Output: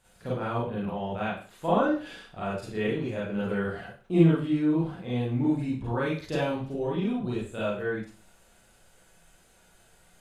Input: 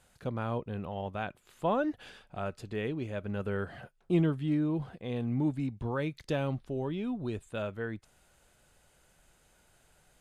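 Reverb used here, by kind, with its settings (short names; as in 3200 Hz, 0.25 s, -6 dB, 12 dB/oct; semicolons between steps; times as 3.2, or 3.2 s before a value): Schroeder reverb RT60 0.4 s, combs from 33 ms, DRR -8 dB; gain -3 dB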